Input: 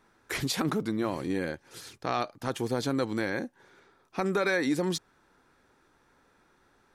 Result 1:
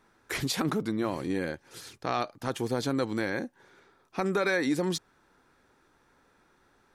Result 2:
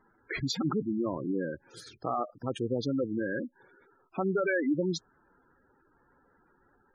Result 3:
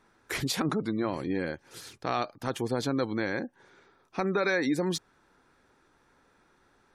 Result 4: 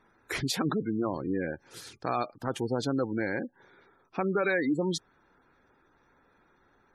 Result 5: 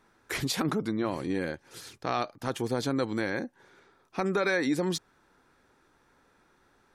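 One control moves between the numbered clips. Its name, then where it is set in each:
spectral gate, under each frame's peak: -60, -10, -35, -20, -45 dB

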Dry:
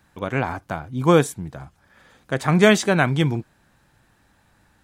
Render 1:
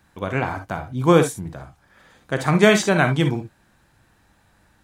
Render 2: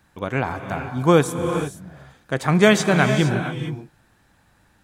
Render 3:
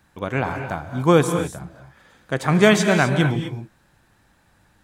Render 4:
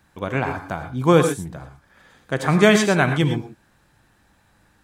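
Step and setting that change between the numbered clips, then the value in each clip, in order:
non-linear reverb, gate: 80, 490, 280, 140 ms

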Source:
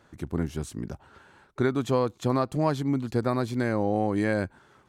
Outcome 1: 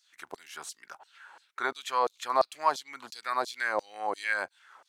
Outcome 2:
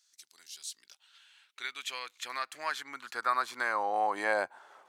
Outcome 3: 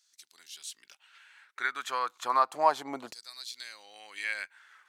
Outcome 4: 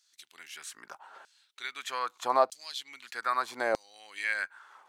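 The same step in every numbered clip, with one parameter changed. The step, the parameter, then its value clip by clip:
LFO high-pass, rate: 2.9, 0.2, 0.32, 0.8 Hz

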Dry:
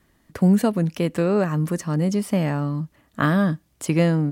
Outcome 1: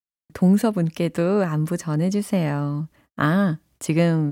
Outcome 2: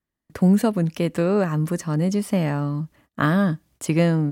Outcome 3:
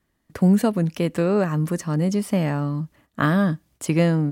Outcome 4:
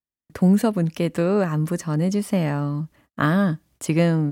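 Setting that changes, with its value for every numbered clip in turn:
gate, range: -52, -24, -10, -39 dB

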